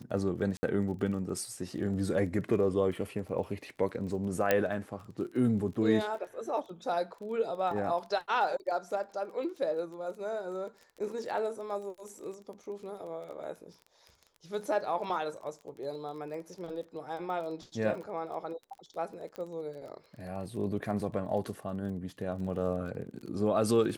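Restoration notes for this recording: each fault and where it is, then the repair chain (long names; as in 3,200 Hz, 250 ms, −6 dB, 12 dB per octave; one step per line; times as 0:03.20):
surface crackle 22 per second −41 dBFS
0:00.57–0:00.63: drop-out 60 ms
0:04.51: click −11 dBFS
0:19.36: click −28 dBFS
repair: click removal
repair the gap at 0:00.57, 60 ms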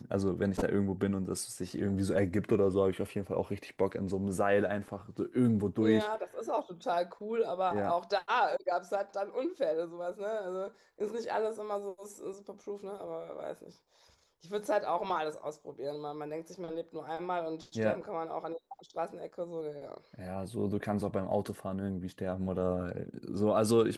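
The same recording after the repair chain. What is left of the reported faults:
none of them is left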